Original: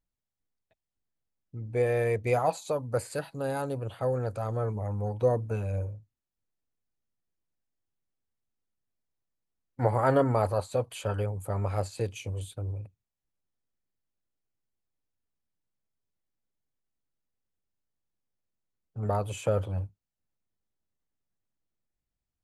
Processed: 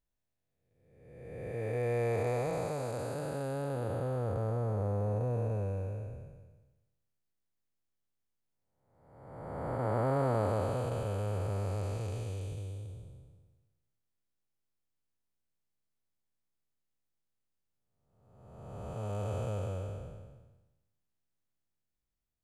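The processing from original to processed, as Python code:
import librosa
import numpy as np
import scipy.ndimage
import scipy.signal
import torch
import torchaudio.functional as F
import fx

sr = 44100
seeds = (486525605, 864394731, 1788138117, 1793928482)

y = fx.spec_blur(x, sr, span_ms=833.0)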